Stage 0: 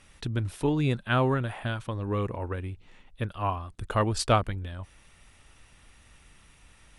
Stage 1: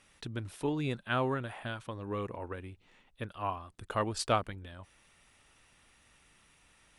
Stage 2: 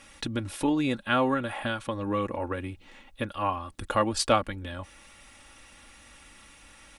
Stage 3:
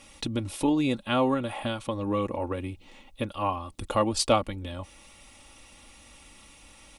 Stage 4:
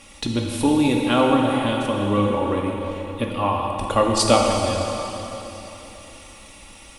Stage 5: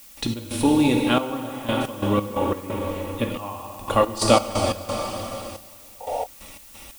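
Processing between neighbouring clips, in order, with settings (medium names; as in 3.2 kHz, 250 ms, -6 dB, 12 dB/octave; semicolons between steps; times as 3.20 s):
bass shelf 110 Hz -12 dB; trim -5 dB
comb 3.6 ms, depth 57%; in parallel at +2 dB: compression, threshold -41 dBFS, peak gain reduction 18 dB; on the sum: trim +3.5 dB
peaking EQ 1.6 kHz -11 dB 0.54 oct; trim +1.5 dB
plate-style reverb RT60 3.6 s, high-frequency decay 0.95×, DRR -0.5 dB; trim +5 dB
painted sound noise, 6.00–6.27 s, 430–940 Hz -26 dBFS; trance gate ".x.xxxx...x.x" 89 bpm -12 dB; added noise blue -47 dBFS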